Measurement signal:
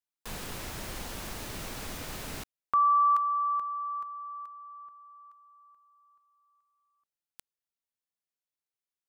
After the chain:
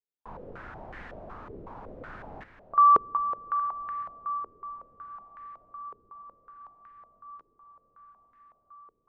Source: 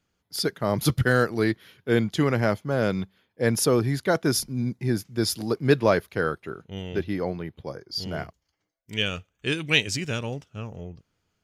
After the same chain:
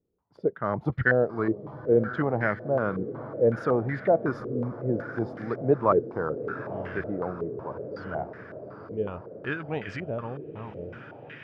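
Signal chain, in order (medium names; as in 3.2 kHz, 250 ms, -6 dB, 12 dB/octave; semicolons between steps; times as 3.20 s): echo that smears into a reverb 896 ms, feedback 67%, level -12.5 dB; step-sequenced low-pass 5.4 Hz 430–1800 Hz; trim -6 dB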